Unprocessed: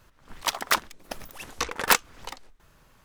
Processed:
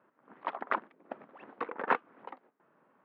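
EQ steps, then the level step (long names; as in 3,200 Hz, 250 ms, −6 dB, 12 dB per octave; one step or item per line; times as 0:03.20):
high-pass filter 220 Hz 24 dB per octave
low-pass filter 1,600 Hz 12 dB per octave
high-frequency loss of the air 470 metres
−2.0 dB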